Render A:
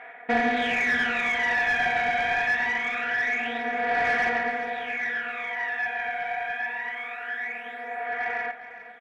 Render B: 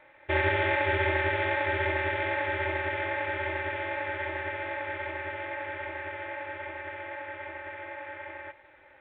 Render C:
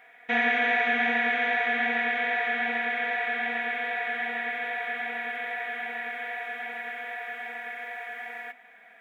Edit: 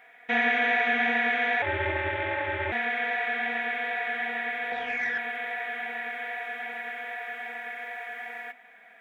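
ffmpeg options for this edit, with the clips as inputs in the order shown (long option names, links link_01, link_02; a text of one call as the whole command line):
ffmpeg -i take0.wav -i take1.wav -i take2.wav -filter_complex "[2:a]asplit=3[link_01][link_02][link_03];[link_01]atrim=end=1.622[link_04];[1:a]atrim=start=1.618:end=2.722[link_05];[link_02]atrim=start=2.718:end=4.722[link_06];[0:a]atrim=start=4.718:end=5.182[link_07];[link_03]atrim=start=5.178[link_08];[link_04][link_05]acrossfade=duration=0.004:curve1=hsin:curve2=hsin[link_09];[link_09][link_06]acrossfade=duration=0.004:curve1=hsin:curve2=hsin[link_10];[link_10][link_07]acrossfade=duration=0.004:curve1=hsin:curve2=hsin[link_11];[link_11][link_08]acrossfade=duration=0.004:curve1=hsin:curve2=hsin" out.wav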